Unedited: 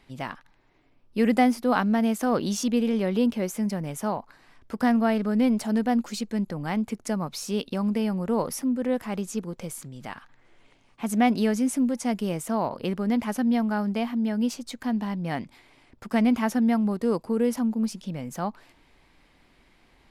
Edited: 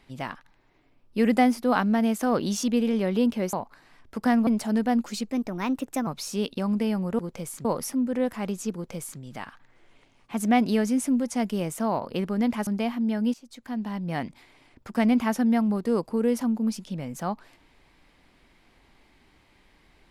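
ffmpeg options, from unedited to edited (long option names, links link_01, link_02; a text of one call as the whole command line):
ffmpeg -i in.wav -filter_complex "[0:a]asplit=9[link_01][link_02][link_03][link_04][link_05][link_06][link_07][link_08][link_09];[link_01]atrim=end=3.532[link_10];[link_02]atrim=start=4.098:end=5.042[link_11];[link_03]atrim=start=5.468:end=6.314[link_12];[link_04]atrim=start=6.31:end=7.22,asetpts=PTS-STARTPTS,asetrate=52920,aresample=44100,atrim=end_sample=33442,asetpts=PTS-STARTPTS[link_13];[link_05]atrim=start=7.216:end=8.342[link_14];[link_06]atrim=start=9.428:end=9.892[link_15];[link_07]atrim=start=8.338:end=13.362[link_16];[link_08]atrim=start=13.828:end=14.5,asetpts=PTS-STARTPTS,afade=type=out:start_time=0.668:duration=0.004:curve=hsin:silence=0.133352[link_17];[link_09]atrim=start=14.5,asetpts=PTS-STARTPTS,afade=type=in:duration=0.79:silence=0.133352[link_18];[link_10][link_11]acrossfade=duration=0.004:curve1=hsin:curve2=hsin[link_19];[link_19][link_12]acrossfade=duration=0.004:curve1=hsin:curve2=hsin[link_20];[link_20][link_13]acrossfade=duration=0.004:curve1=hsin:curve2=hsin[link_21];[link_21][link_14]acrossfade=duration=0.004:curve1=hsin:curve2=hsin[link_22];[link_22][link_15]acrossfade=duration=0.004:curve1=hsin:curve2=hsin[link_23];[link_23][link_16]acrossfade=duration=0.004:curve1=hsin:curve2=hsin[link_24];[link_17][link_18]concat=n=2:v=0:a=1[link_25];[link_24][link_25]acrossfade=duration=0.004:curve1=hsin:curve2=hsin" out.wav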